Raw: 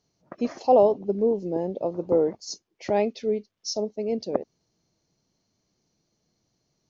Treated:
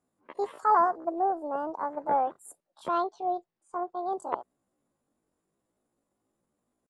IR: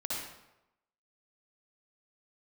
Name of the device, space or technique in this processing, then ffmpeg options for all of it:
chipmunk voice: -filter_complex "[0:a]asetrate=74167,aresample=44100,atempo=0.594604,asettb=1/sr,asplit=3[a][b][c];[a]atrim=end=2.944[d];[b]atrim=start=2.94:end=4.13,asetpts=PTS-STARTPTS,afade=t=in:d=0.004:c=qsin,afade=t=out:st=1.186:d=0.004:c=qsin,lowpass=f=5.1k:w=0.5412,lowpass=f=5.1k:w=1.3066[e];[c]atrim=start=4.126[f];[d][e]acrossfade=d=0.004:c1=hsin:c2=qsin[g];[g][f]acrossfade=d=0.004:c1=qsin:c2=hsin,highshelf=f=3k:g=-9,volume=-4dB"

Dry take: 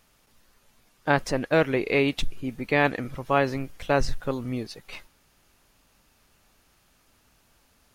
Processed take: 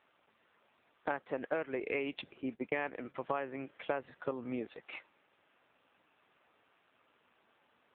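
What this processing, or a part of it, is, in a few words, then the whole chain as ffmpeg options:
voicemail: -filter_complex "[0:a]asettb=1/sr,asplit=3[a][b][c];[a]atrim=end=1.804[d];[b]atrim=start=1.8:end=3.15,asetpts=PTS-STARTPTS,afade=t=in:d=0.004:c=qsin,afade=t=out:st=1.346:d=0.004:c=qsin,agate=range=-43dB:threshold=-33dB:ratio=16:detection=peak[e];[c]atrim=start=3.146[f];[d][e]acrossfade=d=0.004:c1=hsin:c2=qsin[g];[g][f]acrossfade=d=0.004:c1=qsin:c2=hsin,highpass=320,lowpass=3.1k,acompressor=threshold=-31dB:ratio=10" -ar 8000 -c:a libopencore_amrnb -b:a 7400

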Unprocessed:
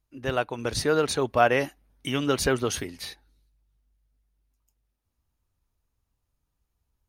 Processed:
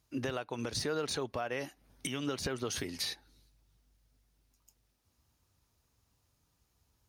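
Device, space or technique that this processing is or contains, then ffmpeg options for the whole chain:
broadcast voice chain: -af "highpass=75,deesser=0.6,acompressor=threshold=-34dB:ratio=4,equalizer=f=5.3k:t=o:w=1.1:g=5.5,alimiter=level_in=6.5dB:limit=-24dB:level=0:latency=1:release=369,volume=-6.5dB,volume=6.5dB"

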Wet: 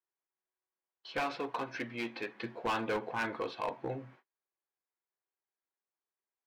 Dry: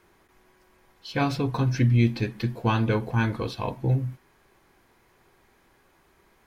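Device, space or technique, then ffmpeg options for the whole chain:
walkie-talkie: -filter_complex "[0:a]highpass=440,lowpass=2.7k,asoftclip=type=hard:threshold=-26.5dB,agate=range=-35dB:threshold=-58dB:ratio=16:detection=peak,asettb=1/sr,asplit=3[a][b][c];[a]atrim=end=1.204[d];[b]atrim=start=1.2:end=2.4,asetpts=PTS-STARTPTS,afade=t=in:d=0.004:c=qsin,afade=t=out:st=1.196:d=0.004:c=qsin,highpass=f=330:p=1[e];[c]atrim=start=2.396[f];[d][e]acrossfade=d=0.004:c1=hsin:c2=qsin[g];[g][f]acrossfade=d=0.004:c1=qsin:c2=hsin,volume=-1.5dB"

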